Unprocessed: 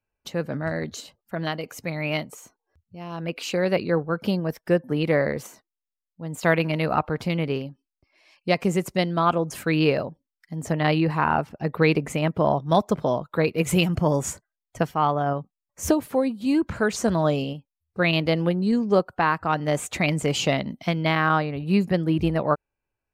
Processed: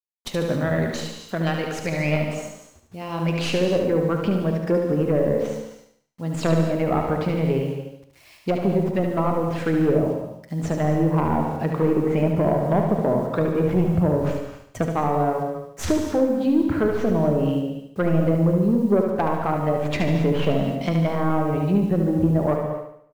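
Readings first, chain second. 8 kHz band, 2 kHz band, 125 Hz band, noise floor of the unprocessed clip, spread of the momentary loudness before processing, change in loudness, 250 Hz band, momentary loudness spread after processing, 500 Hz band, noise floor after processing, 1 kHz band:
−5.5 dB, −5.0 dB, +3.5 dB, below −85 dBFS, 11 LU, +1.5 dB, +3.5 dB, 10 LU, +2.5 dB, −53 dBFS, −1.5 dB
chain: stylus tracing distortion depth 0.18 ms
treble cut that deepens with the level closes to 710 Hz, closed at −18 dBFS
in parallel at −2.5 dB: downward compressor 6 to 1, threshold −29 dBFS, peak gain reduction 13.5 dB
on the sum: soft clipping −12 dBFS, distortion −20 dB
bit reduction 9 bits
repeating echo 73 ms, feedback 46%, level −6 dB
reverb whose tail is shaped and stops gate 290 ms flat, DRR 5 dB

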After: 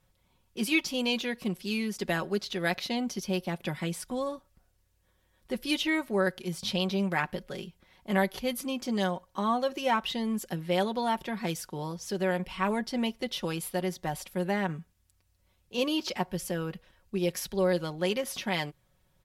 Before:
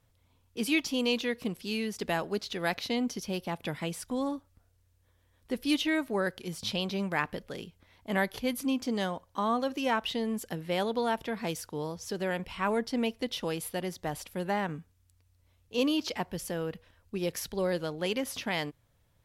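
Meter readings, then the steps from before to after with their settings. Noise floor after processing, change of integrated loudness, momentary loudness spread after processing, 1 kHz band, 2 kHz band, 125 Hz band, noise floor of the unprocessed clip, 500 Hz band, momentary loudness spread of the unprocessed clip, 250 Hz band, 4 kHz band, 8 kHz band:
−70 dBFS, +1.5 dB, 8 LU, +1.5 dB, +1.5 dB, +3.5 dB, −69 dBFS, +1.5 dB, 8 LU, +1.0 dB, +1.0 dB, +1.5 dB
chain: comb filter 5.4 ms, depth 60%

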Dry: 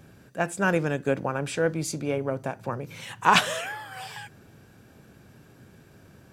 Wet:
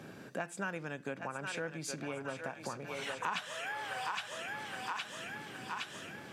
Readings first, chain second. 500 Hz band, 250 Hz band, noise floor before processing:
−13.5 dB, −13.5 dB, −54 dBFS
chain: high-shelf EQ 8,500 Hz −11 dB
feedback echo with a high-pass in the loop 815 ms, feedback 57%, high-pass 740 Hz, level −7.5 dB
dynamic equaliser 420 Hz, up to −8 dB, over −38 dBFS, Q 0.81
downward compressor 5 to 1, threshold −42 dBFS, peak gain reduction 23 dB
high-pass filter 200 Hz 12 dB per octave
level +5.5 dB

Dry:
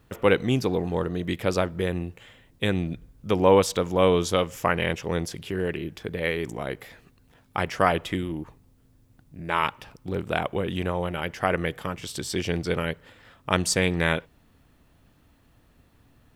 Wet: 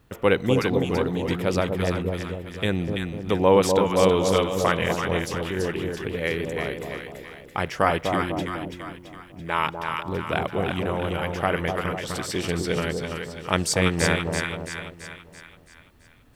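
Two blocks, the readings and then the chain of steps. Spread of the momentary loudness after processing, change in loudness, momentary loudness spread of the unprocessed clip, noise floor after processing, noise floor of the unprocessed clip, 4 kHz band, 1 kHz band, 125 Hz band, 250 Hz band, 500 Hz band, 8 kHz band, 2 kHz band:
14 LU, +1.5 dB, 12 LU, −51 dBFS, −60 dBFS, +2.0 dB, +2.0 dB, +2.0 dB, +2.0 dB, +2.0 dB, +2.0 dB, +2.0 dB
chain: on a send: echo with a time of its own for lows and highs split 960 Hz, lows 249 ms, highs 334 ms, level −4 dB

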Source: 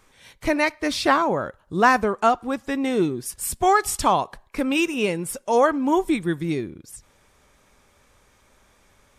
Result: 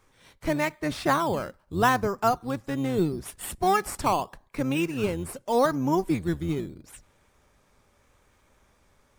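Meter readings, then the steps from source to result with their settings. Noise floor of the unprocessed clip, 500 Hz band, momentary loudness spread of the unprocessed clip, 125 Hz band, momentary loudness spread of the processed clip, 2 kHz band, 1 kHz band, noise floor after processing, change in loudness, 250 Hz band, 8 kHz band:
−60 dBFS, −4.5 dB, 9 LU, +2.5 dB, 10 LU, −7.0 dB, −5.0 dB, −65 dBFS, −4.5 dB, −4.0 dB, −7.5 dB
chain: sub-octave generator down 1 octave, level −4 dB
dynamic equaliser 5,100 Hz, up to −4 dB, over −39 dBFS, Q 0.78
in parallel at −5.5 dB: sample-and-hold swept by an LFO 10×, swing 60% 0.81 Hz
on the sum: level −8 dB

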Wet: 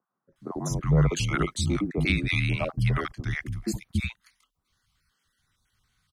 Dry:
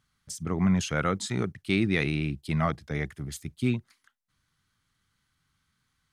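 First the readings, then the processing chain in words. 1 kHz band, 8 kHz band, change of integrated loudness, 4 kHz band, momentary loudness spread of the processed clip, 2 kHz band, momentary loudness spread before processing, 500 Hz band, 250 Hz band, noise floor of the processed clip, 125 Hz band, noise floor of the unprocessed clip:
−1.0 dB, +2.0 dB, +1.5 dB, +3.5 dB, 10 LU, +2.5 dB, 11 LU, 0.0 dB, −1.5 dB, −82 dBFS, +4.5 dB, −76 dBFS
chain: time-frequency cells dropped at random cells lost 27%
frequency shifter −37 Hz
three-band delay without the direct sound mids, lows, highs 280/360 ms, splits 220/1,000 Hz
level +4.5 dB

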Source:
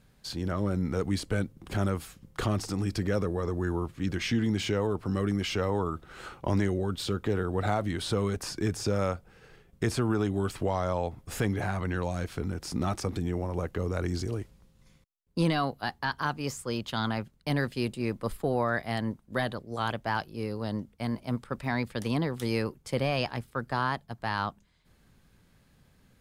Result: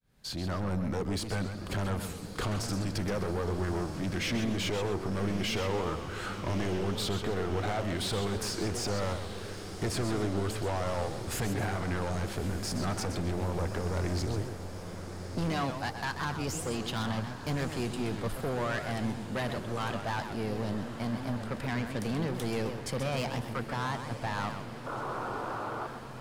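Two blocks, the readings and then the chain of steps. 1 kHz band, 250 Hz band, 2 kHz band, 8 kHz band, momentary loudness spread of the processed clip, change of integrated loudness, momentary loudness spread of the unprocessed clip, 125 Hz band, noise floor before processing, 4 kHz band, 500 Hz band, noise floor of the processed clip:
−2.0 dB, −3.0 dB, −2.0 dB, +2.5 dB, 5 LU, −2.5 dB, 6 LU, −2.0 dB, −63 dBFS, +0.5 dB, −2.5 dB, −41 dBFS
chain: fade in at the beginning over 0.51 s
in parallel at +0.5 dB: downward compressor, threshold −39 dBFS, peak gain reduction 16.5 dB
on the sum: sound drawn into the spectrogram noise, 0:24.86–0:25.87, 280–1,500 Hz −36 dBFS
soft clipping −28 dBFS, distortion −8 dB
on a send: feedback delay with all-pass diffusion 1,213 ms, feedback 70%, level −11.5 dB
on the sum: feedback echo with a swinging delay time 129 ms, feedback 34%, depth 207 cents, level −8.5 dB

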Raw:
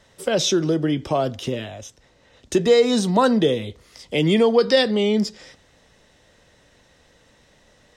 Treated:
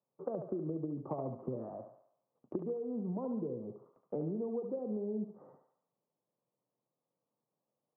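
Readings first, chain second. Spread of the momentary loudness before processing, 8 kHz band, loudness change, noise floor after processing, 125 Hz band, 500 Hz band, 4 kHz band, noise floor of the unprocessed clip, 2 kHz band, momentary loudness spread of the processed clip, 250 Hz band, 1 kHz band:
12 LU, below −40 dB, −19.5 dB, below −85 dBFS, −16.5 dB, −19.5 dB, below −40 dB, −57 dBFS, below −40 dB, 9 LU, −17.0 dB, −22.5 dB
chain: Chebyshev band-pass filter 120–1,200 Hz, order 5
noise gate −54 dBFS, range −24 dB
treble cut that deepens with the level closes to 500 Hz, closed at −17.5 dBFS
downward compressor 12 to 1, threshold −28 dBFS, peak gain reduction 14.5 dB
on a send: feedback echo with a high-pass in the loop 71 ms, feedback 58%, high-pass 500 Hz, level −5 dB
on the sum: level −6.5 dB

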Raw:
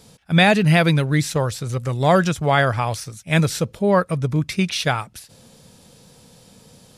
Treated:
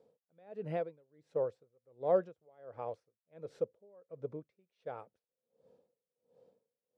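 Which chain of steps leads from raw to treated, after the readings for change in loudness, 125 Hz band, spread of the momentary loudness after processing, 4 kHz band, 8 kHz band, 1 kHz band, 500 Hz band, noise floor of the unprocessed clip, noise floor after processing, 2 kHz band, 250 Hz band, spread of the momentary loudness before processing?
−19.5 dB, −32.5 dB, 19 LU, below −40 dB, below −40 dB, −23.0 dB, −14.5 dB, −51 dBFS, below −85 dBFS, −36.5 dB, −29.0 dB, 10 LU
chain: resonant band-pass 490 Hz, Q 4
tremolo with a sine in dB 1.4 Hz, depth 32 dB
level −5.5 dB

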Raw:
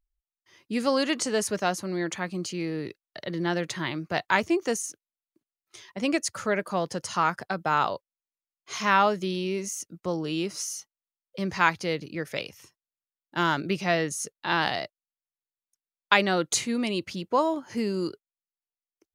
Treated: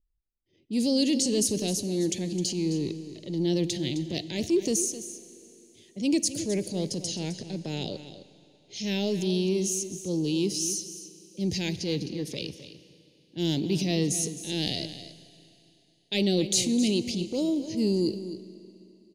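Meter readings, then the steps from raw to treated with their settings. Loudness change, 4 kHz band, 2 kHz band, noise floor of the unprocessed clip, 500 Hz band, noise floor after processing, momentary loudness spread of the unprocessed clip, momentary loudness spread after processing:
−0.5 dB, +2.0 dB, −13.5 dB, below −85 dBFS, −1.5 dB, −65 dBFS, 11 LU, 14 LU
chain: Chebyshev band-stop filter 350–4,000 Hz, order 2
low-pass that shuts in the quiet parts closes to 1,600 Hz, open at −29.5 dBFS
transient designer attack −6 dB, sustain +5 dB
single-tap delay 261 ms −13 dB
four-comb reverb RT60 3.1 s, combs from 33 ms, DRR 15.5 dB
level +4.5 dB

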